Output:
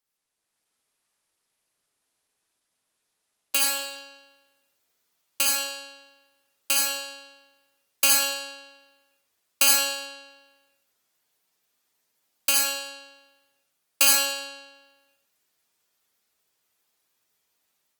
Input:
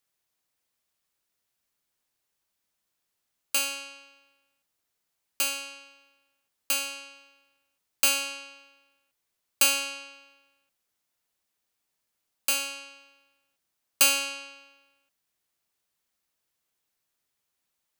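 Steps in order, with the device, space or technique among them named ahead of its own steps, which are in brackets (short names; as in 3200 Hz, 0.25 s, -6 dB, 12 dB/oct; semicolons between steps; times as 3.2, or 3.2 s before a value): far-field microphone of a smart speaker (reverb RT60 0.50 s, pre-delay 52 ms, DRR -1.5 dB; HPF 120 Hz 6 dB/oct; AGC gain up to 7 dB; gain -4 dB; Opus 20 kbps 48000 Hz)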